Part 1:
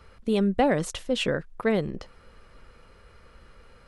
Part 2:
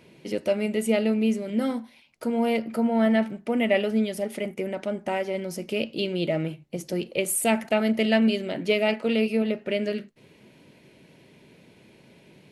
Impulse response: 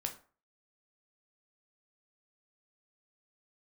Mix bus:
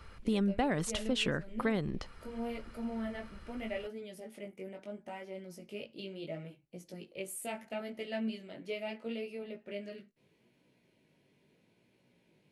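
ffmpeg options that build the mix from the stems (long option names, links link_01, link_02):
-filter_complex "[0:a]equalizer=frequency=510:width_type=o:width=0.77:gain=-6,volume=0.5dB[link_01];[1:a]flanger=delay=16:depth=5:speed=0.75,volume=-13.5dB[link_02];[link_01][link_02]amix=inputs=2:normalize=0,acompressor=threshold=-30dB:ratio=2.5"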